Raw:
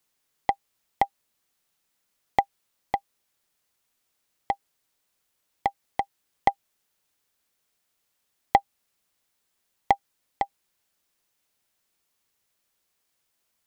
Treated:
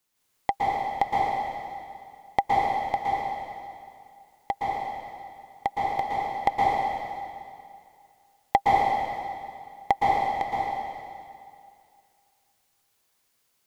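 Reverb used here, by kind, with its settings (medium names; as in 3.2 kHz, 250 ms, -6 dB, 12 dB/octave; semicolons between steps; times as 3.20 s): plate-style reverb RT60 2.3 s, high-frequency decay 0.95×, pre-delay 105 ms, DRR -6 dB; trim -2 dB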